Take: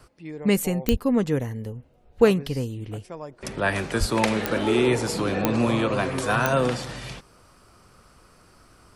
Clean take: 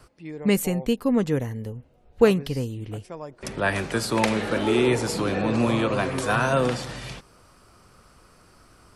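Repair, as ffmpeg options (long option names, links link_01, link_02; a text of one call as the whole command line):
ffmpeg -i in.wav -filter_complex "[0:a]adeclick=threshold=4,asplit=3[link_01][link_02][link_03];[link_01]afade=type=out:start_time=0.9:duration=0.02[link_04];[link_02]highpass=frequency=140:width=0.5412,highpass=frequency=140:width=1.3066,afade=type=in:start_time=0.9:duration=0.02,afade=type=out:start_time=1.02:duration=0.02[link_05];[link_03]afade=type=in:start_time=1.02:duration=0.02[link_06];[link_04][link_05][link_06]amix=inputs=3:normalize=0,asplit=3[link_07][link_08][link_09];[link_07]afade=type=out:start_time=3.99:duration=0.02[link_10];[link_08]highpass=frequency=140:width=0.5412,highpass=frequency=140:width=1.3066,afade=type=in:start_time=3.99:duration=0.02,afade=type=out:start_time=4.11:duration=0.02[link_11];[link_09]afade=type=in:start_time=4.11:duration=0.02[link_12];[link_10][link_11][link_12]amix=inputs=3:normalize=0" out.wav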